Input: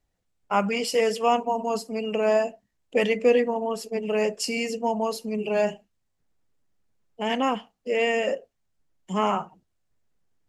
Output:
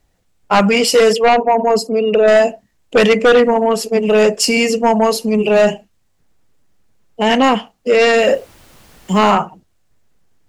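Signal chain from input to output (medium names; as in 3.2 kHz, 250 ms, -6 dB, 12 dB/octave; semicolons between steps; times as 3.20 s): 1.13–2.28 s: resonances exaggerated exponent 1.5; sine folder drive 8 dB, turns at -8 dBFS; 8.17–9.31 s: added noise pink -48 dBFS; trim +2.5 dB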